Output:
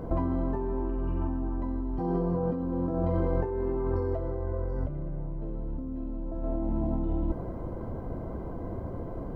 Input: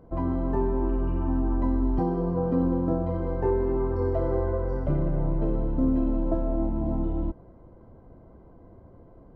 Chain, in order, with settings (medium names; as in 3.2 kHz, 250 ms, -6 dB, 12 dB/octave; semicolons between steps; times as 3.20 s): 4.17–6.43 s: bass shelf 230 Hz +4.5 dB; compressor with a negative ratio -34 dBFS, ratio -1; trim +4.5 dB